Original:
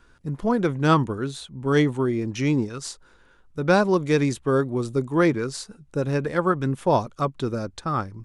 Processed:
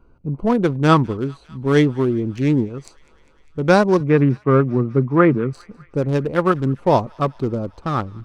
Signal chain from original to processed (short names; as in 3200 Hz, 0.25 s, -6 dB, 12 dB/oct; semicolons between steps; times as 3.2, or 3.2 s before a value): Wiener smoothing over 25 samples; 4–5.53 speaker cabinet 120–2500 Hz, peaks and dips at 130 Hz +8 dB, 230 Hz +4 dB, 1200 Hz +6 dB; on a send: thin delay 0.201 s, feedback 76%, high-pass 1500 Hz, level -23 dB; on the sum: gain +5 dB